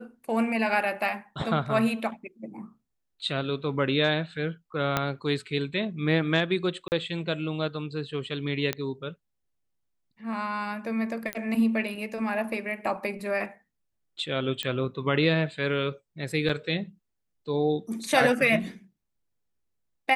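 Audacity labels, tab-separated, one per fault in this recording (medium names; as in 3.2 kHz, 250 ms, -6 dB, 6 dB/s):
4.970000	4.970000	pop -9 dBFS
6.880000	6.920000	dropout 39 ms
8.730000	8.730000	pop -12 dBFS
11.330000	11.330000	pop -15 dBFS
14.630000	14.630000	pop -15 dBFS
16.490000	16.490000	dropout 4.6 ms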